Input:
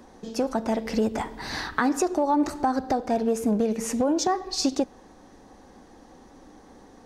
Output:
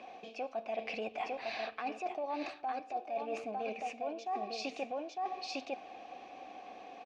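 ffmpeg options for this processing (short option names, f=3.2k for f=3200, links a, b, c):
-filter_complex "[0:a]asplit=3[a][b][c];[a]bandpass=f=730:t=q:w=8,volume=0dB[d];[b]bandpass=f=1.09k:t=q:w=8,volume=-6dB[e];[c]bandpass=f=2.44k:t=q:w=8,volume=-9dB[f];[d][e][f]amix=inputs=3:normalize=0,highshelf=f=1.6k:t=q:w=3:g=8,aecho=1:1:904:0.447,areverse,acompressor=threshold=-47dB:ratio=16,areverse,lowpass=5.3k,volume=12.5dB"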